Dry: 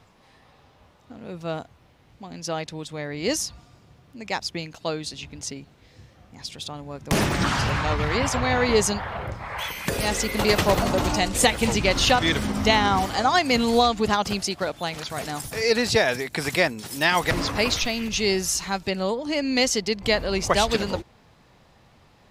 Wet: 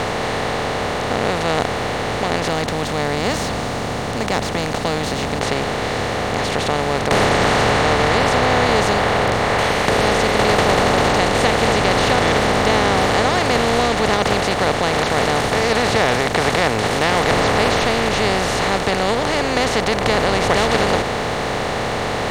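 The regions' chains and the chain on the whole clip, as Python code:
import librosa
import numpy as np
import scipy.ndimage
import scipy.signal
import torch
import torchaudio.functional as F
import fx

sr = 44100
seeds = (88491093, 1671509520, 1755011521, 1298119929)

y = fx.chain(x, sr, fx.curve_eq(hz=(120.0, 250.0, 400.0, 800.0, 1900.0, 3400.0, 6300.0), db=(0, 6, -13, -10, -17, -13, 0)),
    fx.resample_bad(factor=2, down='none', up='hold'), at=(2.48, 5.41))
y = fx.bin_compress(y, sr, power=0.2)
y = fx.lowpass(y, sr, hz=2900.0, slope=6)
y = fx.peak_eq(y, sr, hz=110.0, db=5.5, octaves=0.28)
y = F.gain(torch.from_numpy(y), -4.5).numpy()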